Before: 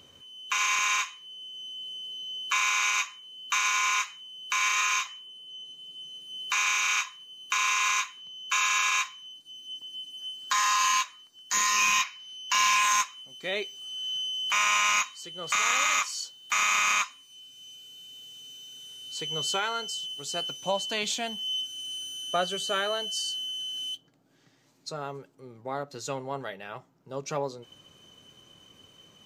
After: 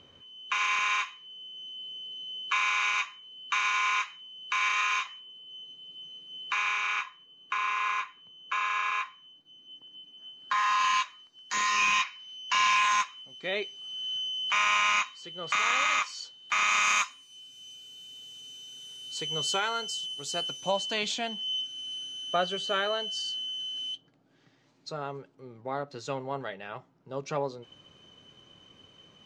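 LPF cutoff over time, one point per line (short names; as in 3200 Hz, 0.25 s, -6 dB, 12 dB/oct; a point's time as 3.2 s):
6.01 s 3400 Hz
7.34 s 1900 Hz
10.35 s 1900 Hz
11.02 s 4100 Hz
16.55 s 4100 Hz
17.02 s 10000 Hz
20.45 s 10000 Hz
21.37 s 4400 Hz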